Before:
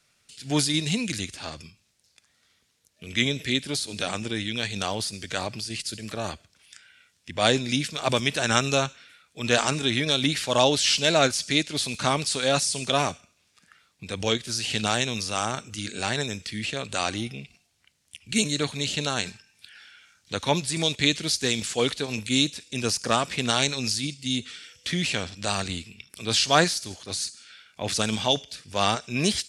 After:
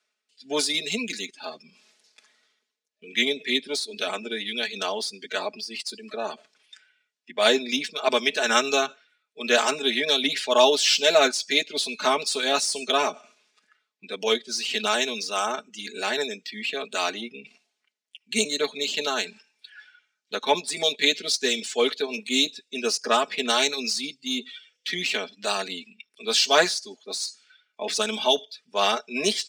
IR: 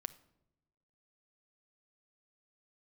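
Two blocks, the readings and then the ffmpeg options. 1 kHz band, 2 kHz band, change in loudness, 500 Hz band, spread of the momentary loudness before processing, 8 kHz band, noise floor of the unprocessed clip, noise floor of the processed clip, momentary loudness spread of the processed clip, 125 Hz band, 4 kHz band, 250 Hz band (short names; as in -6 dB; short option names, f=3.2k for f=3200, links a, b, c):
+1.5 dB, +2.0 dB, +1.0 dB, +3.0 dB, 11 LU, -1.0 dB, -68 dBFS, -80 dBFS, 13 LU, under -15 dB, +1.5 dB, -4.5 dB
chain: -af "afftdn=nr=19:nf=-38,adynamicsmooth=sensitivity=3.5:basefreq=7.3k,aecho=1:1:4.7:0.86,areverse,acompressor=mode=upward:threshold=-35dB:ratio=2.5,areverse,highpass=f=290:w=0.5412,highpass=f=290:w=1.3066"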